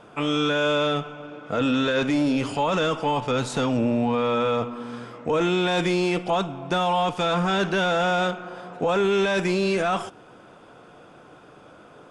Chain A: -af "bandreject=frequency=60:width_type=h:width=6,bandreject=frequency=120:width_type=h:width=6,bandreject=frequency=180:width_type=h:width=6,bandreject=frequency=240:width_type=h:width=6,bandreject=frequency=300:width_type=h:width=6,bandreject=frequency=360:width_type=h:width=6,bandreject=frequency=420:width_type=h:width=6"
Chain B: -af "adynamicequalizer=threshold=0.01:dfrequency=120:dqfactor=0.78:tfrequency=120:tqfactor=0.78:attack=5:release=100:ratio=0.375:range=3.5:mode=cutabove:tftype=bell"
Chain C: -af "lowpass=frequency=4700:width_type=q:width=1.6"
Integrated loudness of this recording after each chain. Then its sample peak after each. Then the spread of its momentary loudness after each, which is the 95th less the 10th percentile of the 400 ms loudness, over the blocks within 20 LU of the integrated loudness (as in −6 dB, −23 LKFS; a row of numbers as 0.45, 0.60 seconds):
−24.0, −24.0, −23.0 LKFS; −12.5, −13.5, −12.5 dBFS; 7, 8, 8 LU